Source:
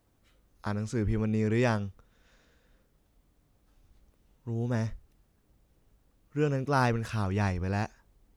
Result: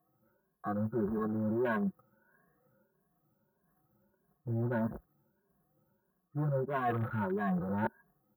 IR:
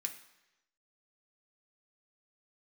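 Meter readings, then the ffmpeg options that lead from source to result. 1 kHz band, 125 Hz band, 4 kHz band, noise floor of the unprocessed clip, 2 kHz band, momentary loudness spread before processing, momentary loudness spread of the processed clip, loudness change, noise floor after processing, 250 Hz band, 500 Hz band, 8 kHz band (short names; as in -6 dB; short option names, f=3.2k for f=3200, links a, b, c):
-3.0 dB, -6.5 dB, under -15 dB, -69 dBFS, -5.0 dB, 12 LU, 6 LU, -4.0 dB, -79 dBFS, -2.0 dB, -3.0 dB, under -25 dB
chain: -af "afftfilt=real='re*pow(10,24/40*sin(2*PI*(1.5*log(max(b,1)*sr/1024/100)/log(2)-(1.6)*(pts-256)/sr)))':imag='im*pow(10,24/40*sin(2*PI*(1.5*log(max(b,1)*sr/1024/100)/log(2)-(1.6)*(pts-256)/sr)))':win_size=1024:overlap=0.75,acrusher=bits=3:mode=log:mix=0:aa=0.000001,asuperstop=centerf=4700:order=20:qfactor=0.5,asoftclip=type=tanh:threshold=-18.5dB,highpass=f=89:w=0.5412,highpass=f=89:w=1.3066,aecho=1:1:5.5:0.89,afwtdn=0.0158,areverse,acompressor=threshold=-37dB:ratio=6,areverse,volume=6dB"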